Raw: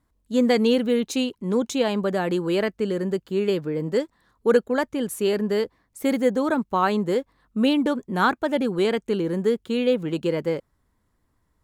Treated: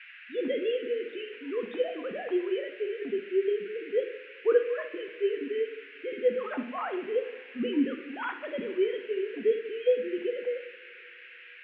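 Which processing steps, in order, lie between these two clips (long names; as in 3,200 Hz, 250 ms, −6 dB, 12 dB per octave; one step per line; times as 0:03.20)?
three sine waves on the formant tracks
noise in a band 1,500–2,800 Hz −42 dBFS
coupled-rooms reverb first 0.57 s, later 2.7 s, from −17 dB, DRR 5 dB
level −8.5 dB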